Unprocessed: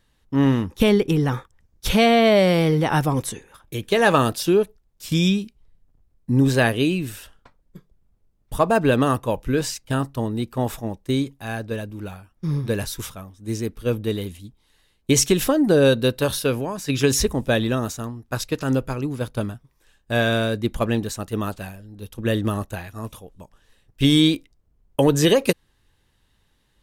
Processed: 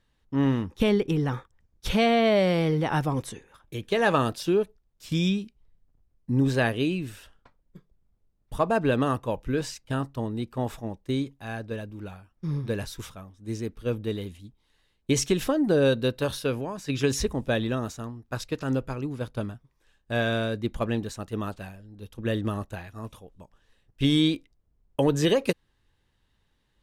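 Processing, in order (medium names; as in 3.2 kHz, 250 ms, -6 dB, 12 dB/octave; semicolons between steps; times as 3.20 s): treble shelf 8.8 kHz -11.5 dB; trim -5.5 dB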